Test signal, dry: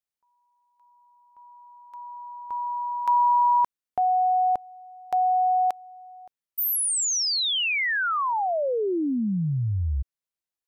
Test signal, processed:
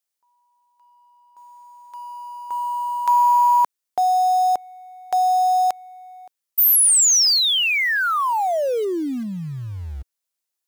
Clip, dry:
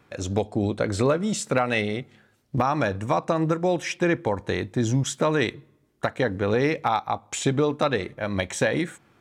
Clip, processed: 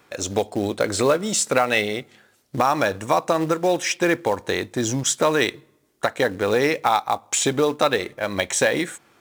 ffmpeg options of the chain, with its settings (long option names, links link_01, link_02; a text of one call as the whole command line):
ffmpeg -i in.wav -filter_complex "[0:a]bass=frequency=250:gain=-10,treble=frequency=4000:gain=6,asplit=2[link_01][link_02];[link_02]acrusher=bits=3:mode=log:mix=0:aa=0.000001,volume=-4dB[link_03];[link_01][link_03]amix=inputs=2:normalize=0" out.wav